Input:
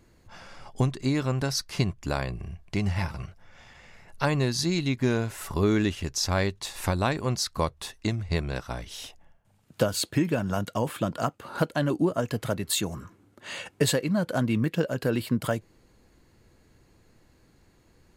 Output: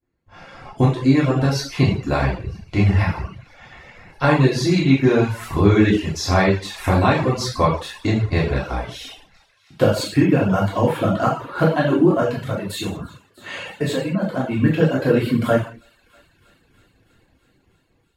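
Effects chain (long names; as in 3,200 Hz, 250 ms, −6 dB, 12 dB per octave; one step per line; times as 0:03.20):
automatic gain control gain up to 5.5 dB
downward expander −46 dBFS
low-shelf EQ 79 Hz −6.5 dB
feedback echo with a high-pass in the loop 322 ms, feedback 78%, high-pass 1,000 Hz, level −24 dB
0:12.24–0:14.59: downward compressor 1.5 to 1, threshold −33 dBFS, peak gain reduction 7.5 dB
bass and treble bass +3 dB, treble −12 dB
reverb whose tail is shaped and stops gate 250 ms falling, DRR −6.5 dB
reverb reduction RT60 0.55 s
level −1.5 dB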